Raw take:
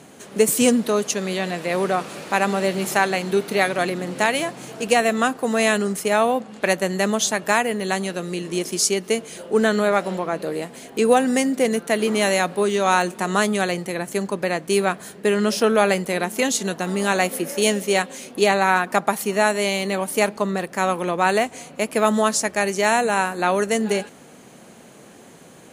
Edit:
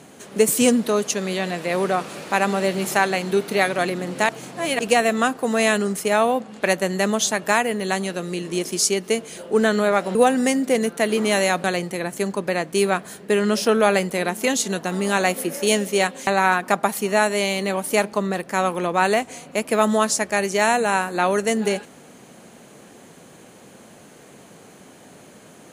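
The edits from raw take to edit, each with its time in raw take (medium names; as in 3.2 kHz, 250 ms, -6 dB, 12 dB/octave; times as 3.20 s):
4.29–4.79 s: reverse
10.15–11.05 s: delete
12.54–13.59 s: delete
18.22–18.51 s: delete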